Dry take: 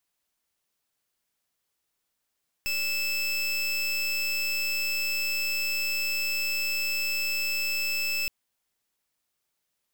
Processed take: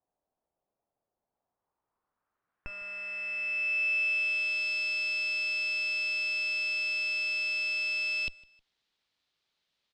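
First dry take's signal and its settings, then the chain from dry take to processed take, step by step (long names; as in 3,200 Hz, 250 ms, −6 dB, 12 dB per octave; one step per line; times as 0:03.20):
pulse wave 2,630 Hz, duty 26% −28 dBFS 5.62 s
asymmetric clip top −39.5 dBFS, bottom −28.5 dBFS
repeating echo 156 ms, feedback 36%, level −23 dB
low-pass filter sweep 700 Hz → 3,900 Hz, 0:01.14–0:04.68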